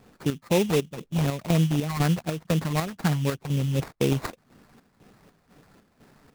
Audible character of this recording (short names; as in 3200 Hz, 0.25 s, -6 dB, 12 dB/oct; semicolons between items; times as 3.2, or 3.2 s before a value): phasing stages 6, 4 Hz, lowest notch 380–3500 Hz; chopped level 2 Hz, depth 60%, duty 60%; aliases and images of a low sample rate 3100 Hz, jitter 20%